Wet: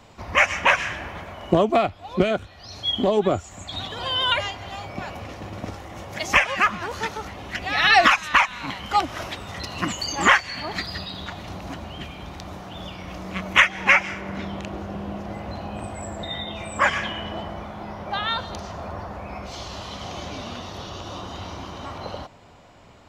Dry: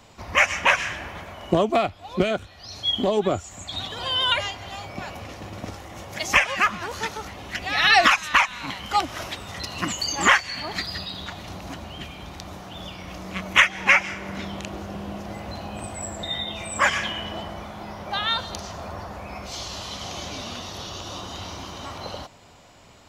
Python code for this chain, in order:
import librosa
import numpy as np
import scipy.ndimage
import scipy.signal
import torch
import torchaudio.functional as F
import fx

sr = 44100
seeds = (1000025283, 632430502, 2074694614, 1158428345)

y = fx.high_shelf(x, sr, hz=3700.0, db=fx.steps((0.0, -6.5), (14.2, -11.5)))
y = y * librosa.db_to_amplitude(2.0)